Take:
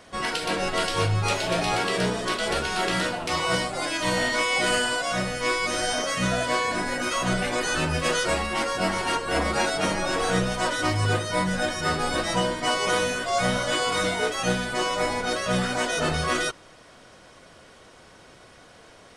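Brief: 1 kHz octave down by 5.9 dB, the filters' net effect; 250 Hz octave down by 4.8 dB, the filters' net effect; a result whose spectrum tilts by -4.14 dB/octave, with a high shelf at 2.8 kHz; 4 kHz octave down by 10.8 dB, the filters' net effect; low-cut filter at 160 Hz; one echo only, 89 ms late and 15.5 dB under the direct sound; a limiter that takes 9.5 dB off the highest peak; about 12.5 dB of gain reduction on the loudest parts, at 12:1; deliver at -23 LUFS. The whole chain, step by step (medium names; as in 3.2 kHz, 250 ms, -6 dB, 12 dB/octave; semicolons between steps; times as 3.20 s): high-pass 160 Hz; peaking EQ 250 Hz -5 dB; peaking EQ 1 kHz -6 dB; treble shelf 2.8 kHz -8 dB; peaking EQ 4 kHz -8 dB; compression 12:1, threshold -37 dBFS; peak limiter -37 dBFS; delay 89 ms -15.5 dB; trim +22.5 dB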